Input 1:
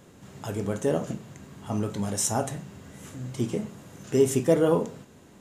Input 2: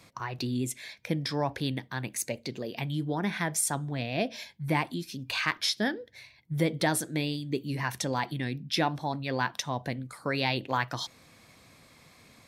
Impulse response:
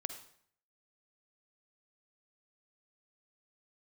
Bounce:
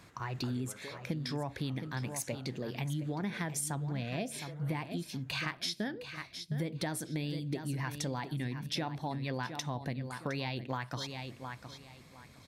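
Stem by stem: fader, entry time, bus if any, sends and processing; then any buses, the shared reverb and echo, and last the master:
-13.5 dB, 0.00 s, no send, no echo send, peaking EQ 1.6 kHz +13.5 dB 2 oct; compression 6:1, threshold -27 dBFS, peak gain reduction 14.5 dB; auto duck -9 dB, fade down 1.95 s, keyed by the second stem
-4.0 dB, 0.00 s, no send, echo send -12 dB, bass shelf 210 Hz +7.5 dB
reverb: none
echo: feedback delay 713 ms, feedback 23%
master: compression, threshold -32 dBFS, peak gain reduction 10 dB

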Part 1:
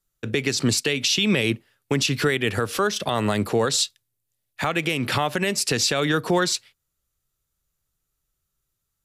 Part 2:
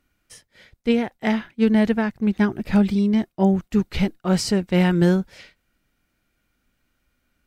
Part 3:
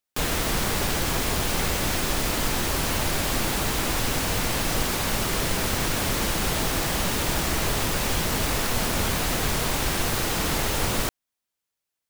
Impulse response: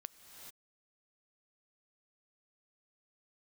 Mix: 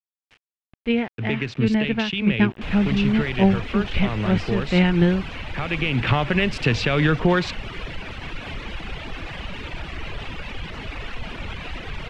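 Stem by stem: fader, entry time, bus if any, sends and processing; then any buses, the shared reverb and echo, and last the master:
-1.0 dB, 0.95 s, no send, local Wiener filter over 9 samples; peaking EQ 120 Hz +6.5 dB 1.9 oct; auto duck -8 dB, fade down 1.70 s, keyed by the second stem
+1.0 dB, 0.00 s, no send, random flutter of the level
-3.5 dB, 2.45 s, no send, reverb removal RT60 2 s; peak limiter -22.5 dBFS, peak gain reduction 8.5 dB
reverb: none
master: bass shelf 110 Hz +9 dB; small samples zeroed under -40 dBFS; resonant low-pass 2.7 kHz, resonance Q 2.3

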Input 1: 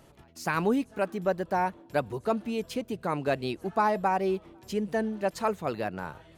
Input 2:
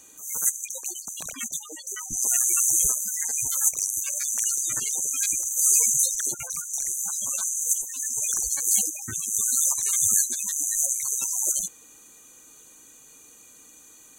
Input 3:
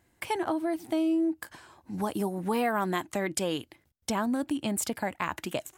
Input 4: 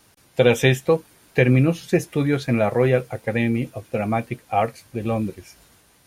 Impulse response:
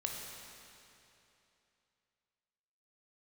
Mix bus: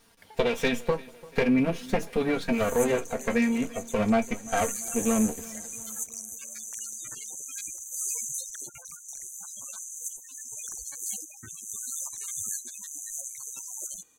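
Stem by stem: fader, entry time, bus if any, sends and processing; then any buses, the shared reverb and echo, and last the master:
mute
-10.0 dB, 2.35 s, no send, no echo send, none
-12.0 dB, 0.00 s, no send, no echo send, compression, threshold -33 dBFS, peak gain reduction 9.5 dB; static phaser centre 1.7 kHz, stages 8
+2.5 dB, 0.00 s, no send, echo send -21.5 dB, comb filter that takes the minimum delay 4.3 ms; compression, threshold -19 dBFS, peak gain reduction 8.5 dB; flange 0.48 Hz, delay 8.7 ms, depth 5.2 ms, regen +55%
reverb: none
echo: feedback delay 343 ms, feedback 53%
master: treble shelf 6.3 kHz -4 dB

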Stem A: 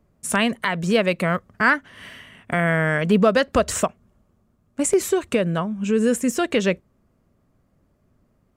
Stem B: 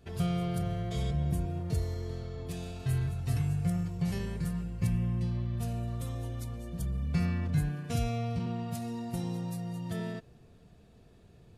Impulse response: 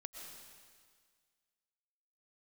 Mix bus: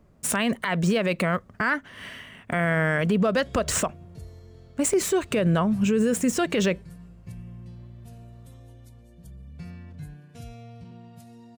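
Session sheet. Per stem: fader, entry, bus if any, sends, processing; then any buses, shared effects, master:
+2.5 dB, 0.00 s, no send, median filter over 3 samples
-11.0 dB, 2.45 s, no send, band-stop 1.2 kHz, Q 15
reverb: none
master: gain riding 0.5 s; peak limiter -14.5 dBFS, peak gain reduction 10.5 dB

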